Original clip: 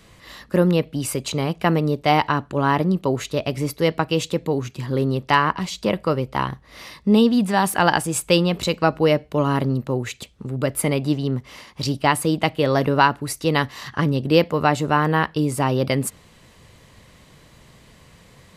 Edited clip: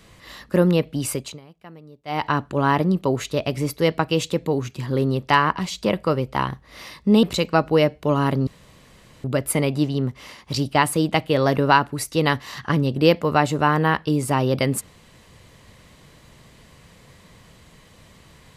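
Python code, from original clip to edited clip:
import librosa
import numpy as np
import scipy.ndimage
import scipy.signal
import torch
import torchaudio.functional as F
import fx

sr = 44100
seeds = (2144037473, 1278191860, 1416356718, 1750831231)

y = fx.edit(x, sr, fx.fade_down_up(start_s=1.11, length_s=1.23, db=-24.0, fade_s=0.29),
    fx.cut(start_s=7.23, length_s=1.29),
    fx.room_tone_fill(start_s=9.76, length_s=0.77), tone=tone)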